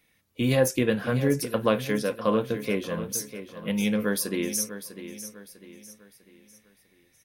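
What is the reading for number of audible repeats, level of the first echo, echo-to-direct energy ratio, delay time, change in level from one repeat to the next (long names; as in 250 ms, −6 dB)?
3, −12.0 dB, −11.5 dB, 649 ms, −8.0 dB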